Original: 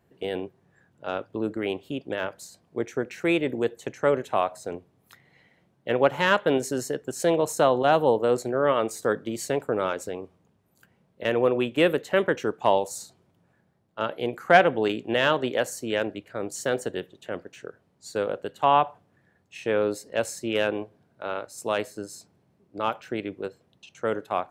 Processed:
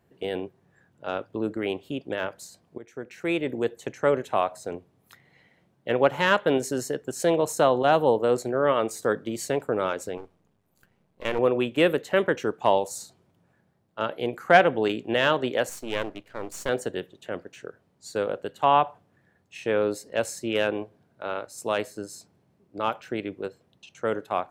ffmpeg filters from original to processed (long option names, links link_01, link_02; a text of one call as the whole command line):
ffmpeg -i in.wav -filter_complex "[0:a]asettb=1/sr,asplit=3[link_01][link_02][link_03];[link_01]atrim=end=10.174[link_04];[link_02]atrim=start=10.17:end=11.39,asetpts=PTS-STARTPTS,afade=type=in:duration=0.004:curve=qsin,afade=type=out:start_time=1.216:duration=0.004:curve=qsin,aeval=exprs='if(lt(val(0),0),0.251*val(0),val(0))':channel_layout=same[link_05];[link_03]atrim=start=11.386[link_06];[link_04][link_05]acrossfade=duration=0.004:curve1=hsin:curve2=qsin[link_07];[link_07][link_06]acrossfade=duration=0.004:curve1=qsin:curve2=hsin,asettb=1/sr,asplit=3[link_08][link_09][link_10];[link_08]atrim=end=15.694[link_11];[link_09]atrim=start=15.69:end=16.69,asetpts=PTS-STARTPTS,afade=type=in:duration=0.004:curve=qsin,afade=type=out:start_time=0.996:duration=0.004:curve=qsin,aeval=exprs='if(lt(val(0),0),0.251*val(0),val(0))':channel_layout=same[link_12];[link_10]atrim=start=16.686[link_13];[link_11][link_12]acrossfade=duration=0.004:curve1=hsin:curve2=qsin[link_14];[link_14][link_13]acrossfade=duration=0.004:curve1=qsin:curve2=hsin,asplit=2[link_15][link_16];[link_15]atrim=end=2.78,asetpts=PTS-STARTPTS,afade=type=out:start_time=2.776:duration=0.004:curve=hsin:silence=0.11885[link_17];[link_16]atrim=start=2.78,asetpts=PTS-STARTPTS,afade=type=in:duration=1.2:curve=qsin:silence=0.11885[link_18];[link_17][link_18]concat=n=2:v=0:a=1" out.wav